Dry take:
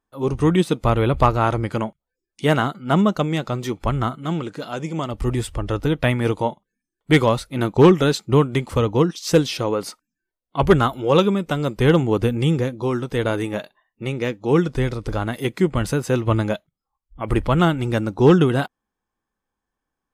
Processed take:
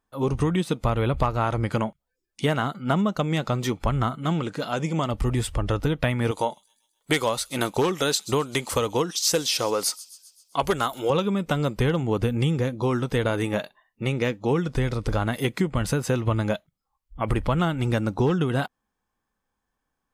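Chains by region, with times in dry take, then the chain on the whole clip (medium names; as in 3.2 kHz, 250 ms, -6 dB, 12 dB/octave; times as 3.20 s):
6.31–11.10 s: tone controls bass -11 dB, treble +10 dB + feedback echo behind a high-pass 130 ms, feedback 58%, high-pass 5.2 kHz, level -16.5 dB
whole clip: peaking EQ 350 Hz -4 dB 0.56 oct; compression 6:1, threshold -22 dBFS; trim +2.5 dB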